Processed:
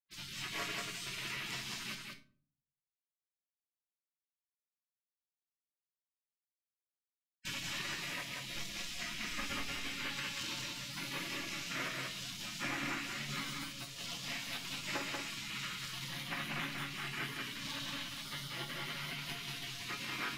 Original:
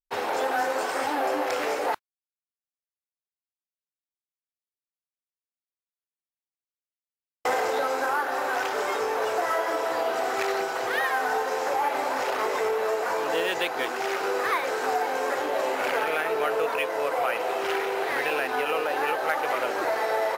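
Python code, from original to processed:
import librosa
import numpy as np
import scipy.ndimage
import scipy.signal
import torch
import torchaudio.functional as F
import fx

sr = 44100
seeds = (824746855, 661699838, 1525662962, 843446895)

y = fx.octave_divider(x, sr, octaves=2, level_db=-3.0, at=(8.51, 9.91))
y = fx.spec_gate(y, sr, threshold_db=-25, keep='weak')
y = fx.lowpass(y, sr, hz=2100.0, slope=6)
y = fx.hum_notches(y, sr, base_hz=60, count=3)
y = fx.comb_fb(y, sr, f0_hz=140.0, decay_s=0.24, harmonics='all', damping=0.0, mix_pct=70)
y = y + 10.0 ** (-3.5 / 20.0) * np.pad(y, (int(187 * sr / 1000.0), 0))[:len(y)]
y = fx.room_shoebox(y, sr, seeds[0], volume_m3=390.0, walls='furnished', distance_m=0.82)
y = y * 10.0 ** (11.5 / 20.0)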